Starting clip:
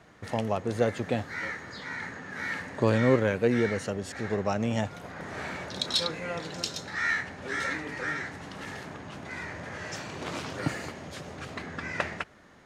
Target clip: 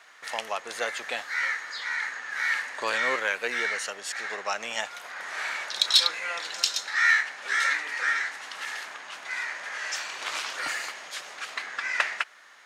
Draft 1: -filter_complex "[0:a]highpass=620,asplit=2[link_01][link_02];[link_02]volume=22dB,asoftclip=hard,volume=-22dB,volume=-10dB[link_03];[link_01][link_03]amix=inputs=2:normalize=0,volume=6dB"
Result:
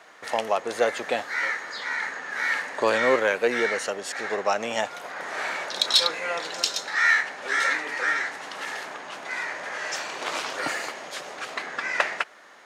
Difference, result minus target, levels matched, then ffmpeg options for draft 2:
500 Hz band +9.0 dB
-filter_complex "[0:a]highpass=1300,asplit=2[link_01][link_02];[link_02]volume=22dB,asoftclip=hard,volume=-22dB,volume=-10dB[link_03];[link_01][link_03]amix=inputs=2:normalize=0,volume=6dB"

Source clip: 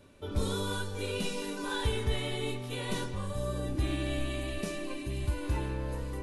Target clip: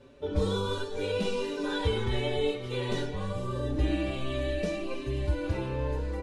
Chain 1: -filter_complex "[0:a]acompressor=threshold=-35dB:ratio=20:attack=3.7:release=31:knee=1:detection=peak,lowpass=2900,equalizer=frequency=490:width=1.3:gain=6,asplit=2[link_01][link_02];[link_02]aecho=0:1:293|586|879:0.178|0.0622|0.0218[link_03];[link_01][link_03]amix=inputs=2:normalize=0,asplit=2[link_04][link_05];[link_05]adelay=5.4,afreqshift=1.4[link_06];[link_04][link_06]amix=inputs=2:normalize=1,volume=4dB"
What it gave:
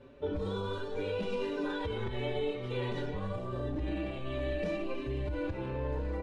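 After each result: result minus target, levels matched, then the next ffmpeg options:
downward compressor: peak gain reduction +14 dB; 8,000 Hz band −10.0 dB
-filter_complex "[0:a]lowpass=2900,equalizer=frequency=490:width=1.3:gain=6,asplit=2[link_01][link_02];[link_02]aecho=0:1:293|586|879:0.178|0.0622|0.0218[link_03];[link_01][link_03]amix=inputs=2:normalize=0,asplit=2[link_04][link_05];[link_05]adelay=5.4,afreqshift=1.4[link_06];[link_04][link_06]amix=inputs=2:normalize=1,volume=4dB"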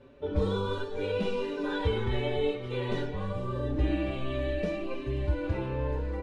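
8,000 Hz band −11.0 dB
-filter_complex "[0:a]lowpass=5800,equalizer=frequency=490:width=1.3:gain=6,asplit=2[link_01][link_02];[link_02]aecho=0:1:293|586|879:0.178|0.0622|0.0218[link_03];[link_01][link_03]amix=inputs=2:normalize=0,asplit=2[link_04][link_05];[link_05]adelay=5.4,afreqshift=1.4[link_06];[link_04][link_06]amix=inputs=2:normalize=1,volume=4dB"

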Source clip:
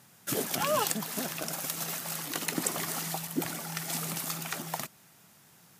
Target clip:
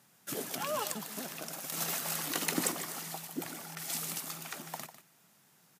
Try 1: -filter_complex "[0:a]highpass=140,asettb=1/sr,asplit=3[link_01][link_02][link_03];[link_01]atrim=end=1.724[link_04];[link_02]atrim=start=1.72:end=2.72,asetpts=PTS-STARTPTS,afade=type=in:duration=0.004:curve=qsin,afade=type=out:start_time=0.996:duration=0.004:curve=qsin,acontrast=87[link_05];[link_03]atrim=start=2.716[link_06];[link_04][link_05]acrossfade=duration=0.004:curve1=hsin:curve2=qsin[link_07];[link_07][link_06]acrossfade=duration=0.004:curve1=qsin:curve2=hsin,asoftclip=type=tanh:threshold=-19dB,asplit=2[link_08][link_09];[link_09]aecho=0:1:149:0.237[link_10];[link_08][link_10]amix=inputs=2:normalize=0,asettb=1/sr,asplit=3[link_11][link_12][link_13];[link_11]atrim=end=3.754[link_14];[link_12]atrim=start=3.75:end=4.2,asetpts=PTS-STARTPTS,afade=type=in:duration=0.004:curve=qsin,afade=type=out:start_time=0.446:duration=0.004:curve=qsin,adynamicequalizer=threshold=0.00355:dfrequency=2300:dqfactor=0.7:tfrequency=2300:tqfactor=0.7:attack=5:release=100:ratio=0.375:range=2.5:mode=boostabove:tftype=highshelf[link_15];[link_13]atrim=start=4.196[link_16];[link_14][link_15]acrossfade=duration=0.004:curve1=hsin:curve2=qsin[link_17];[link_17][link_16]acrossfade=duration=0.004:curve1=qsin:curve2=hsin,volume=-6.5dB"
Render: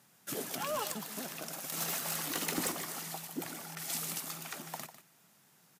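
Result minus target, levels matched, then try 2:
soft clipping: distortion +11 dB
-filter_complex "[0:a]highpass=140,asettb=1/sr,asplit=3[link_01][link_02][link_03];[link_01]atrim=end=1.724[link_04];[link_02]atrim=start=1.72:end=2.72,asetpts=PTS-STARTPTS,afade=type=in:duration=0.004:curve=qsin,afade=type=out:start_time=0.996:duration=0.004:curve=qsin,acontrast=87[link_05];[link_03]atrim=start=2.716[link_06];[link_04][link_05]acrossfade=duration=0.004:curve1=hsin:curve2=qsin[link_07];[link_07][link_06]acrossfade=duration=0.004:curve1=qsin:curve2=hsin,asoftclip=type=tanh:threshold=-8.5dB,asplit=2[link_08][link_09];[link_09]aecho=0:1:149:0.237[link_10];[link_08][link_10]amix=inputs=2:normalize=0,asettb=1/sr,asplit=3[link_11][link_12][link_13];[link_11]atrim=end=3.754[link_14];[link_12]atrim=start=3.75:end=4.2,asetpts=PTS-STARTPTS,afade=type=in:duration=0.004:curve=qsin,afade=type=out:start_time=0.446:duration=0.004:curve=qsin,adynamicequalizer=threshold=0.00355:dfrequency=2300:dqfactor=0.7:tfrequency=2300:tqfactor=0.7:attack=5:release=100:ratio=0.375:range=2.5:mode=boostabove:tftype=highshelf[link_15];[link_13]atrim=start=4.196[link_16];[link_14][link_15]acrossfade=duration=0.004:curve1=hsin:curve2=qsin[link_17];[link_17][link_16]acrossfade=duration=0.004:curve1=qsin:curve2=hsin,volume=-6.5dB"

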